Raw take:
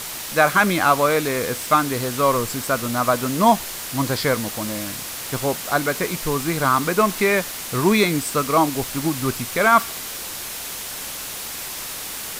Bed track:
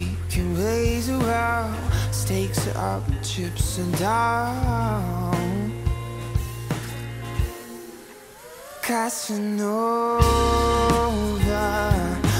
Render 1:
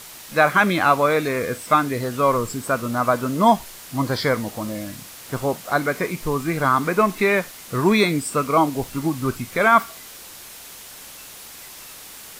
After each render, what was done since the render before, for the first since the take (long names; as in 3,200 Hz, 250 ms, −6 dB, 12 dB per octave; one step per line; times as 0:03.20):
noise reduction from a noise print 9 dB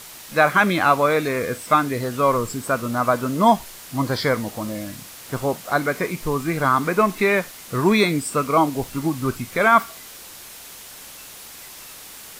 no processing that can be heard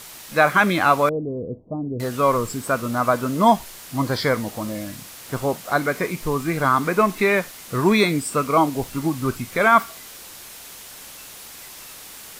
0:01.09–0:02.00: Gaussian smoothing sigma 17 samples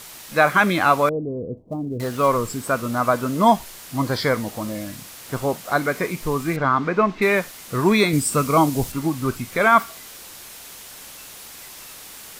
0:01.57–0:02.28: gap after every zero crossing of 0.053 ms
0:06.56–0:07.22: high-frequency loss of the air 180 metres
0:08.13–0:08.92: bass and treble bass +7 dB, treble +6 dB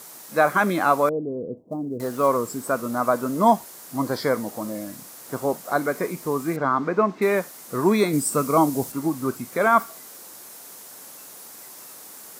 high-pass filter 200 Hz 12 dB per octave
parametric band 2,900 Hz −11 dB 1.6 octaves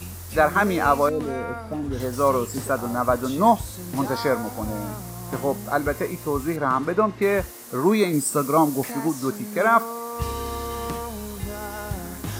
mix in bed track −10.5 dB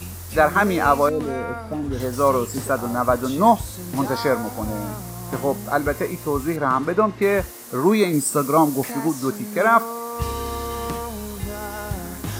level +2 dB